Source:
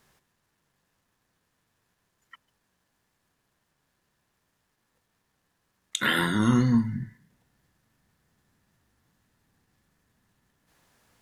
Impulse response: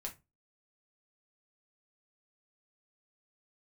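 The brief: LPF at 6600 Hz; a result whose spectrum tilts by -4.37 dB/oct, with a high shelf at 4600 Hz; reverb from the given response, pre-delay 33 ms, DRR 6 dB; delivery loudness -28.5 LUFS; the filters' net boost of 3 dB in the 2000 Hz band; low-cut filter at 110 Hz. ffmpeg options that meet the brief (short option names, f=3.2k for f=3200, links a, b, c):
-filter_complex "[0:a]highpass=110,lowpass=6.6k,equalizer=f=2k:t=o:g=5,highshelf=f=4.6k:g=-7.5,asplit=2[a][b];[1:a]atrim=start_sample=2205,adelay=33[c];[b][c]afir=irnorm=-1:irlink=0,volume=-4dB[d];[a][d]amix=inputs=2:normalize=0,volume=-6dB"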